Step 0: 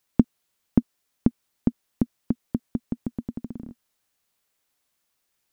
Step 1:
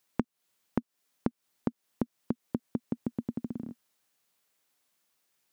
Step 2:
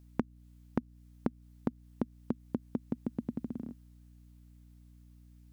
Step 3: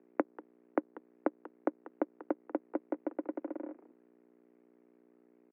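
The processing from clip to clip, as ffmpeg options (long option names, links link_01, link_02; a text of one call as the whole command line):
ffmpeg -i in.wav -af "highpass=120,acompressor=threshold=-26dB:ratio=12" out.wav
ffmpeg -i in.wav -af "aeval=exprs='val(0)+0.00224*(sin(2*PI*60*n/s)+sin(2*PI*2*60*n/s)/2+sin(2*PI*3*60*n/s)/3+sin(2*PI*4*60*n/s)/4+sin(2*PI*5*60*n/s)/5)':channel_layout=same,volume=-2dB" out.wav
ffmpeg -i in.wav -filter_complex "[0:a]asplit=2[link_01][link_02];[link_02]adelay=190,highpass=300,lowpass=3400,asoftclip=type=hard:threshold=-22dB,volume=-12dB[link_03];[link_01][link_03]amix=inputs=2:normalize=0,aeval=exprs='max(val(0),0)':channel_layout=same,highpass=frequency=190:width_type=q:width=0.5412,highpass=frequency=190:width_type=q:width=1.307,lowpass=frequency=2200:width_type=q:width=0.5176,lowpass=frequency=2200:width_type=q:width=0.7071,lowpass=frequency=2200:width_type=q:width=1.932,afreqshift=68,volume=5dB" out.wav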